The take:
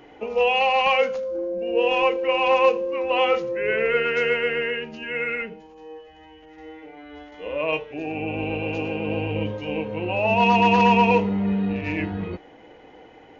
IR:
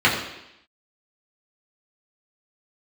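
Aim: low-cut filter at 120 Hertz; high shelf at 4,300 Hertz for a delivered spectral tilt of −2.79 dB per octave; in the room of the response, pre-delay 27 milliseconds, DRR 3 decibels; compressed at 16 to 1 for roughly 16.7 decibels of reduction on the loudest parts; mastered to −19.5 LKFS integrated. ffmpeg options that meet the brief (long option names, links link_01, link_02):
-filter_complex "[0:a]highpass=120,highshelf=frequency=4300:gain=4,acompressor=threshold=-30dB:ratio=16,asplit=2[link_01][link_02];[1:a]atrim=start_sample=2205,adelay=27[link_03];[link_02][link_03]afir=irnorm=-1:irlink=0,volume=-24.5dB[link_04];[link_01][link_04]amix=inputs=2:normalize=0,volume=13.5dB"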